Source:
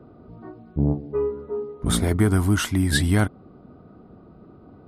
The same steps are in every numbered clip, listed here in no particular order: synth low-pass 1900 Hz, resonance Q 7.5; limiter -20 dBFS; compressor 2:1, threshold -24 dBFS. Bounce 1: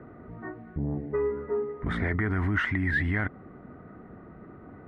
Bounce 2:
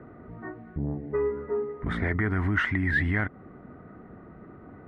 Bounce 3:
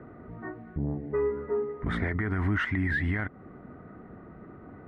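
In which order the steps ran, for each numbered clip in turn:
limiter > synth low-pass > compressor; compressor > limiter > synth low-pass; synth low-pass > compressor > limiter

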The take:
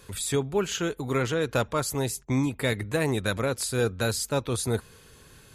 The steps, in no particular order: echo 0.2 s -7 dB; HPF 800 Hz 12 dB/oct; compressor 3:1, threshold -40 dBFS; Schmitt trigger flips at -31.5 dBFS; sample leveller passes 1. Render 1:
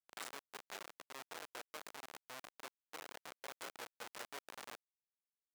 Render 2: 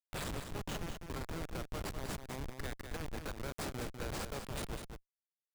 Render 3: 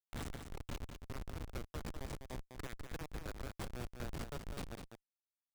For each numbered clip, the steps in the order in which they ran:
sample leveller > echo > compressor > Schmitt trigger > HPF; HPF > compressor > sample leveller > Schmitt trigger > echo; HPF > sample leveller > compressor > Schmitt trigger > echo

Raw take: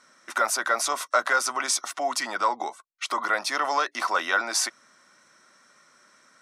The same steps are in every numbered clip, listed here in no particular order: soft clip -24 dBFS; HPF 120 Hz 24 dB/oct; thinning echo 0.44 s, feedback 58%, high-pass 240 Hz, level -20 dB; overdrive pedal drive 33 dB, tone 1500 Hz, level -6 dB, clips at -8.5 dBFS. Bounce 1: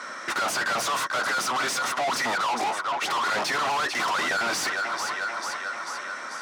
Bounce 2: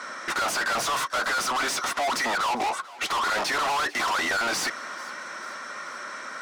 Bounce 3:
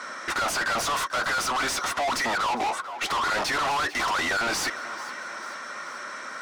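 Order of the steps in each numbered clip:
thinning echo > overdrive pedal > soft clip > HPF; overdrive pedal > HPF > soft clip > thinning echo; HPF > overdrive pedal > thinning echo > soft clip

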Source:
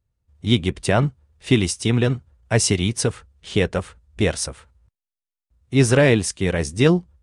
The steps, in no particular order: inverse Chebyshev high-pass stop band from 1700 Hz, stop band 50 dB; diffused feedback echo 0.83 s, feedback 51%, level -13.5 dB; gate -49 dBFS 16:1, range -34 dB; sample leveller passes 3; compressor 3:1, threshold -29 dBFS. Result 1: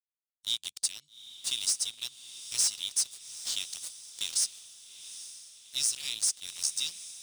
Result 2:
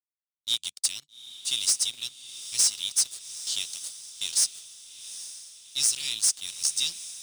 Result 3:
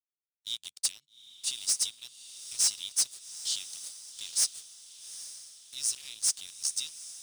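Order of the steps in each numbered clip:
gate > inverse Chebyshev high-pass > sample leveller > compressor > diffused feedback echo; inverse Chebyshev high-pass > gate > compressor > sample leveller > diffused feedback echo; compressor > inverse Chebyshev high-pass > sample leveller > gate > diffused feedback echo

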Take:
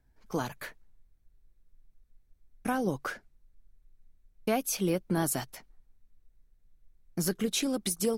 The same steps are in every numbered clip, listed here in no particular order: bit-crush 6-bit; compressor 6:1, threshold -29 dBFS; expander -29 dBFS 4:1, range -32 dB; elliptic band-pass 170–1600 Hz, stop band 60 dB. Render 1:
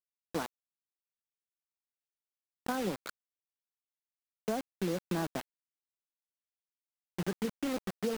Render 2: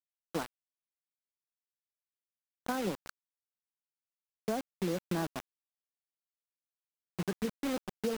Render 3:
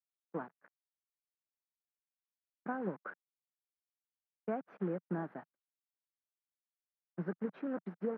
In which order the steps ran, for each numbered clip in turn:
expander > elliptic band-pass > bit-crush > compressor; elliptic band-pass > expander > bit-crush > compressor; bit-crush > compressor > expander > elliptic band-pass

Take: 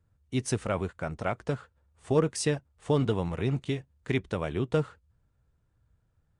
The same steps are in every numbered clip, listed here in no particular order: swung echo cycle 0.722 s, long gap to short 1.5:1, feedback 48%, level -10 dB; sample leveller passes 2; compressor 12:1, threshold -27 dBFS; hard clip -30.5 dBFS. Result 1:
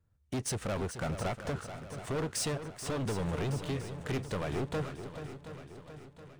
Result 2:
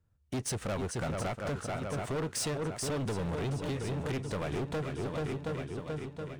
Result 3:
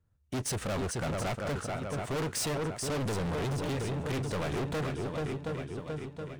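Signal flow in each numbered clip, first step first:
sample leveller > compressor > hard clip > swung echo; sample leveller > swung echo > compressor > hard clip; sample leveller > swung echo > hard clip > compressor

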